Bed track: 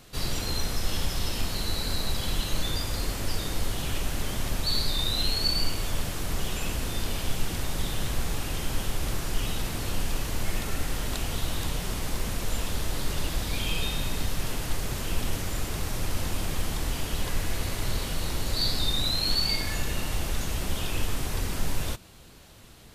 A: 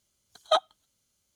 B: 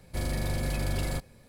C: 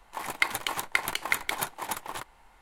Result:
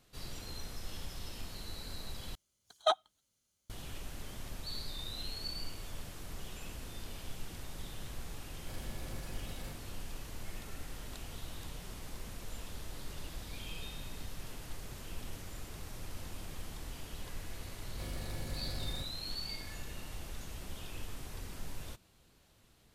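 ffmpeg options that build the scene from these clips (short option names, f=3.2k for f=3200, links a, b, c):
-filter_complex "[2:a]asplit=2[a][b];[0:a]volume=-15dB[c];[a]alimiter=level_in=6dB:limit=-24dB:level=0:latency=1:release=71,volume=-6dB[d];[c]asplit=2[e][f];[e]atrim=end=2.354[g];[1:a]atrim=end=1.35,asetpts=PTS-STARTPTS,volume=-5.5dB[h];[f]atrim=start=3.696[i];[d]atrim=end=1.48,asetpts=PTS-STARTPTS,volume=-8.5dB,afade=t=in:d=0.004:c=hsin,afade=t=out:st=1.476:d=0.004:c=hsin,adelay=8530[j];[b]atrim=end=1.48,asetpts=PTS-STARTPTS,volume=-12.5dB,afade=t=in:d=0.004:c=hsin,afade=t=out:st=1.476:d=0.004:c=hsin,adelay=17840[k];[g][h]acrossfade=d=0.004:c1=hsin:c2=hsin[l];[l][i]acrossfade=d=0.004:c1=hsin:c2=hsin[m];[m][j][k]amix=inputs=3:normalize=0"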